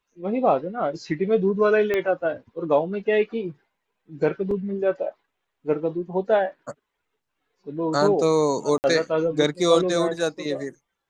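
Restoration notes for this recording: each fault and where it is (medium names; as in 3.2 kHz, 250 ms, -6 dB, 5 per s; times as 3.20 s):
1.94 s: pop -12 dBFS
4.51 s: dropout 3.7 ms
8.78–8.84 s: dropout 59 ms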